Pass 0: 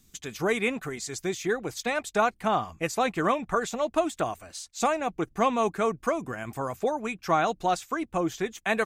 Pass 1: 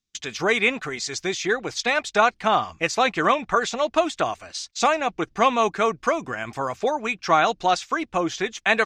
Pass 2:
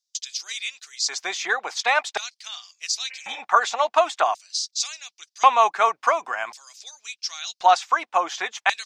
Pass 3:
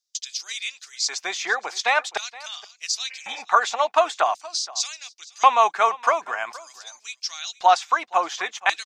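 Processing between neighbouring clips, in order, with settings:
noise gate −48 dBFS, range −27 dB; drawn EQ curve 170 Hz 0 dB, 3,200 Hz +10 dB, 5,500 Hz +10 dB, 13,000 Hz −14 dB
healed spectral selection 0:03.13–0:03.37, 300–3,000 Hz both; auto-filter high-pass square 0.46 Hz 840–4,900 Hz
single-tap delay 471 ms −20.5 dB

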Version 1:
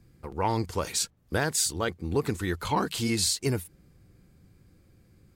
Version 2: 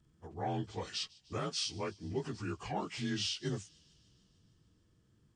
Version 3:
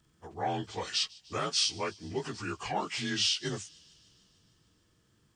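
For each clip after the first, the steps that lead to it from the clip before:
partials spread apart or drawn together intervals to 87%; delay with a high-pass on its return 150 ms, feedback 70%, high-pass 3,200 Hz, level −22 dB; level −8 dB
low-shelf EQ 450 Hz −10.5 dB; level +8.5 dB

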